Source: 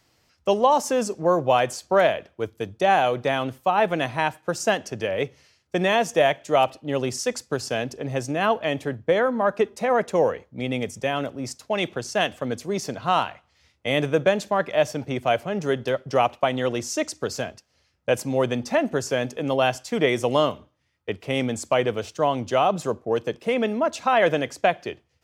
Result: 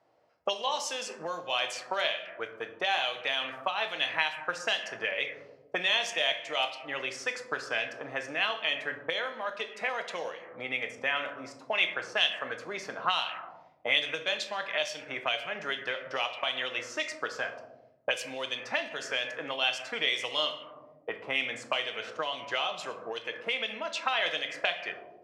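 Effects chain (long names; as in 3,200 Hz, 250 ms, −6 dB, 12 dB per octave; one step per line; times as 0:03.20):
rectangular room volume 210 cubic metres, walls mixed, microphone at 0.55 metres
envelope filter 640–3,700 Hz, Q 2, up, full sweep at −17 dBFS
level +4 dB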